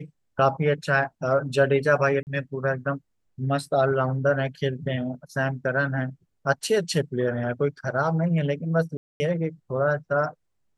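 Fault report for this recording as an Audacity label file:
2.230000	2.270000	drop-out 39 ms
8.970000	9.200000	drop-out 230 ms

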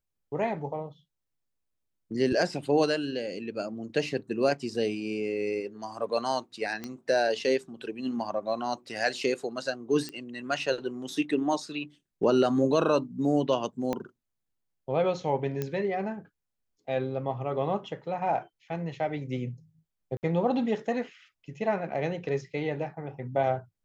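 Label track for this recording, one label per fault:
6.840000	6.840000	click −21 dBFS
10.090000	10.090000	click −22 dBFS
13.930000	13.930000	click −17 dBFS
15.620000	15.620000	click −17 dBFS
20.170000	20.230000	drop-out 59 ms

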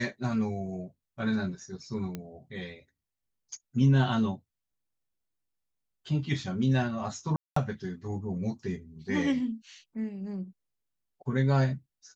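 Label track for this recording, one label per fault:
2.150000	2.150000	click −22 dBFS
7.360000	7.560000	drop-out 204 ms

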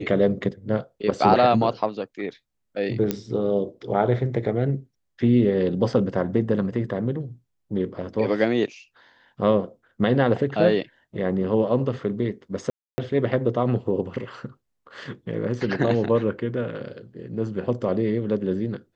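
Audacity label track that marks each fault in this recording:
3.110000	3.110000	click −10 dBFS
12.700000	12.980000	drop-out 280 ms

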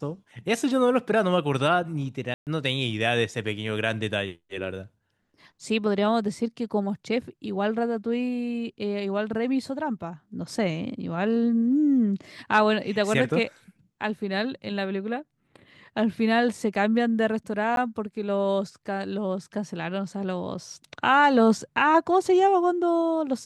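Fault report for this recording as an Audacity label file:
2.340000	2.470000	drop-out 128 ms
17.760000	17.770000	drop-out 12 ms

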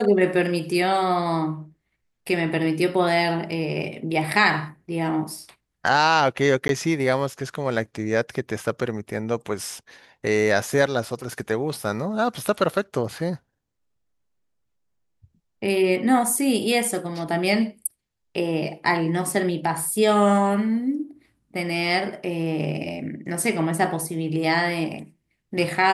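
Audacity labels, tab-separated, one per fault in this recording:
6.680000	6.690000	drop-out 12 ms

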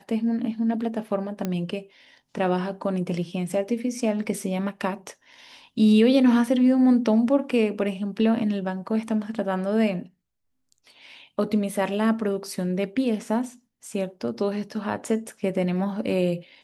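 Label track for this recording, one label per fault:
1.450000	1.450000	click −14 dBFS

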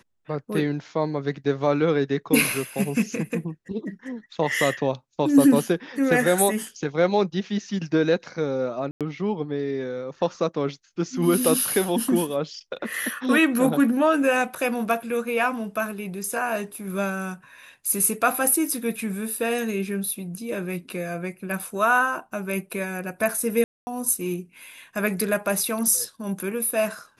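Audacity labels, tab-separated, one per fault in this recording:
8.910000	9.010000	drop-out 97 ms
23.640000	23.870000	drop-out 230 ms

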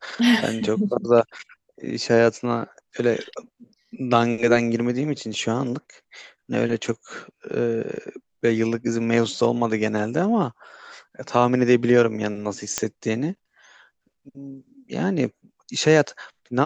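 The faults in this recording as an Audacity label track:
7.970000	7.970000	drop-out 2.8 ms
12.780000	12.780000	click −5 dBFS

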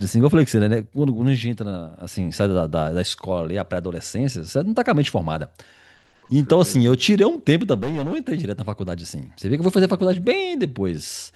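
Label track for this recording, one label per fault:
7.740000	8.180000	clipping −20.5 dBFS

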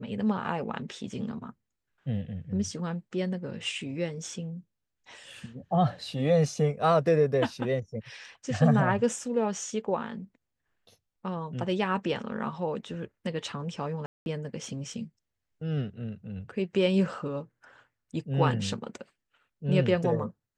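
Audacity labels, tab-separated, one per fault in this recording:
14.060000	14.260000	drop-out 201 ms

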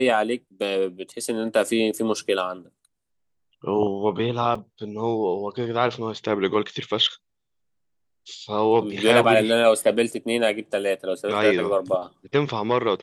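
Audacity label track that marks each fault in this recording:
4.550000	4.550000	drop-out 4.5 ms

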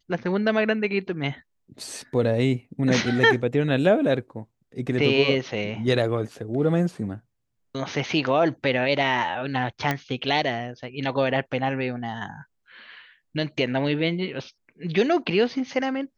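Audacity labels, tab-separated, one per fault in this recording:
9.910000	9.910000	click −10 dBFS

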